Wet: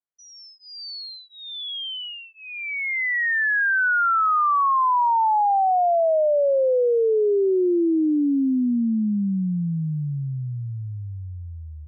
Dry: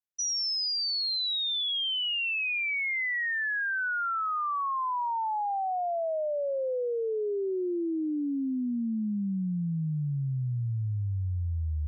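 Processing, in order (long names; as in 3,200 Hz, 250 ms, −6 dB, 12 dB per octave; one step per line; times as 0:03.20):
high-pass filter 210 Hz 12 dB per octave
automatic gain control gain up to 11 dB
Savitzky-Golay smoothing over 41 samples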